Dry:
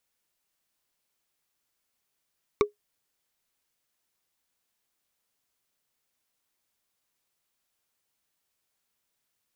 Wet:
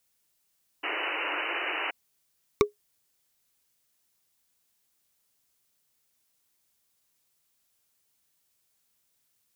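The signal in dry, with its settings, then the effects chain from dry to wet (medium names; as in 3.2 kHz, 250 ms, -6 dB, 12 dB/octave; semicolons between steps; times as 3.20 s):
wood hit, lowest mode 415 Hz, decay 0.13 s, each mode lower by 3.5 dB, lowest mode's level -13.5 dB
peaking EQ 110 Hz +5 dB 2.8 oct; painted sound noise, 0.83–1.91 s, 290–3000 Hz -33 dBFS; treble shelf 3.8 kHz +8 dB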